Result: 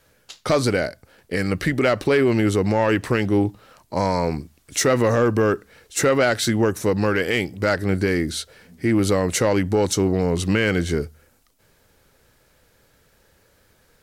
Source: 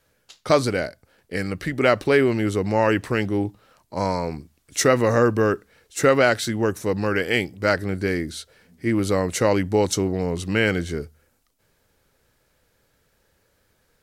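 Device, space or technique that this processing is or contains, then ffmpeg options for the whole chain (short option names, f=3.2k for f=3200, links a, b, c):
soft clipper into limiter: -af "asoftclip=type=tanh:threshold=-9.5dB,alimiter=limit=-17dB:level=0:latency=1:release=192,volume=6.5dB"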